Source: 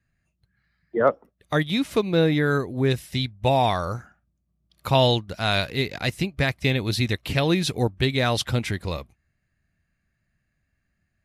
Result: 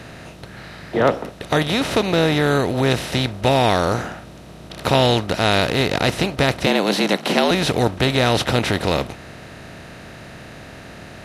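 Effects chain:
compressor on every frequency bin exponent 0.4
0:06.66–0:07.51: frequency shifter +95 Hz
level −1 dB

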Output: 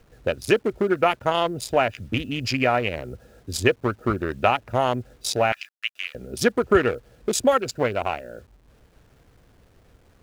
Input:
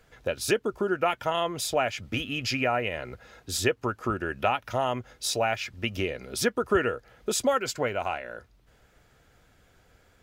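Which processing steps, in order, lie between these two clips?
adaptive Wiener filter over 41 samples
0:05.52–0:06.15: high-pass filter 1,400 Hz 24 dB per octave
bit reduction 11 bits
level +6.5 dB

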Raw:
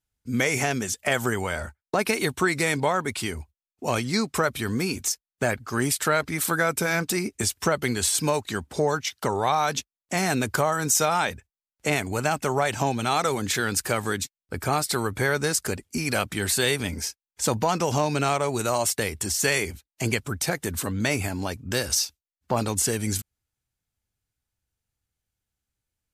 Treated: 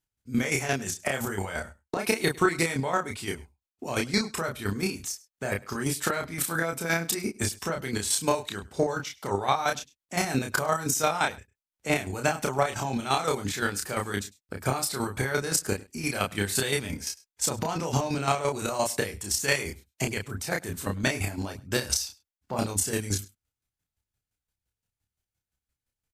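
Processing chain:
square-wave tremolo 5.8 Hz, depth 65%, duty 25%
double-tracking delay 30 ms −3.5 dB
on a send: single-tap delay 102 ms −22.5 dB

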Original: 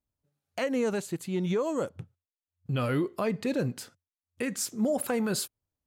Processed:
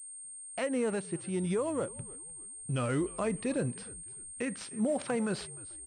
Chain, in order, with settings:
on a send: echo with shifted repeats 304 ms, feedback 37%, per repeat −75 Hz, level −20.5 dB
on the sum: switching amplifier with a slow clock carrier 8,600 Hz
level −3 dB

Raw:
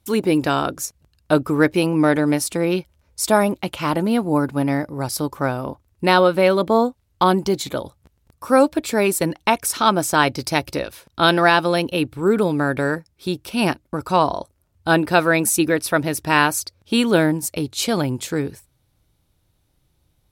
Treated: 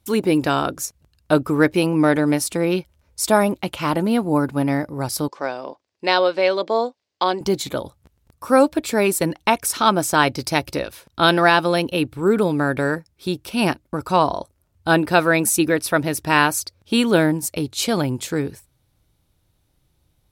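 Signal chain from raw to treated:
0:05.28–0:07.41: loudspeaker in its box 450–6,600 Hz, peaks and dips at 890 Hz −3 dB, 1,300 Hz −7 dB, 4,800 Hz +5 dB

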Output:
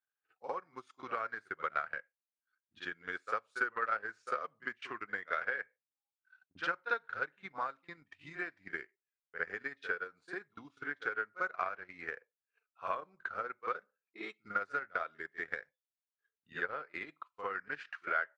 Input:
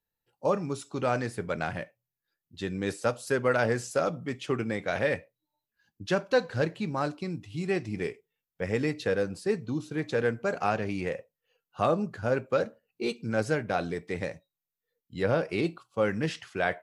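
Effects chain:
change of speed 0.916×
echo ahead of the sound 53 ms −13 dB
downward compressor 2 to 1, threshold −32 dBFS, peak gain reduction 7.5 dB
resonant band-pass 1,500 Hz, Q 2.6
transient designer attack +8 dB, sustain −11 dB
level +2 dB

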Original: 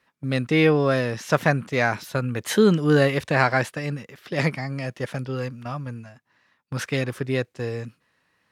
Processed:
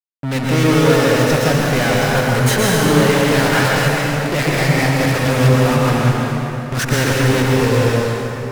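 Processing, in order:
automatic gain control gain up to 9.5 dB
fuzz pedal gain 32 dB, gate −32 dBFS
convolution reverb RT60 3.6 s, pre-delay 103 ms, DRR −4.5 dB
level −4 dB

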